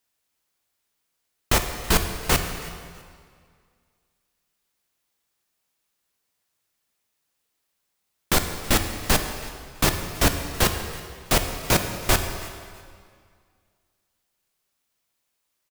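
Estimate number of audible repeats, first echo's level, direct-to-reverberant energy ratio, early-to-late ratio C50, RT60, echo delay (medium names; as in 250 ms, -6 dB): 2, -21.0 dB, 6.0 dB, 7.0 dB, 2.0 s, 326 ms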